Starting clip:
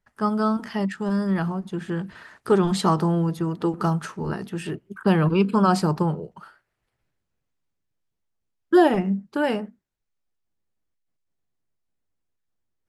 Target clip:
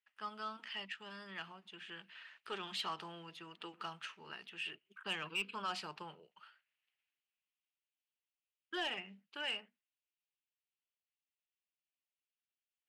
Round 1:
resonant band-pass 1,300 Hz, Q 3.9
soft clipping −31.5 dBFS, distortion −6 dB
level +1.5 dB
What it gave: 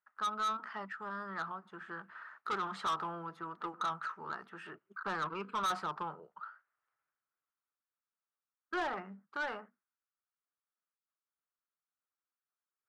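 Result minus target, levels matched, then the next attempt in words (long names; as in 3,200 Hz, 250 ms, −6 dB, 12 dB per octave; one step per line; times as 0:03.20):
1,000 Hz band +5.0 dB
resonant band-pass 2,800 Hz, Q 3.9
soft clipping −31.5 dBFS, distortion −16 dB
level +1.5 dB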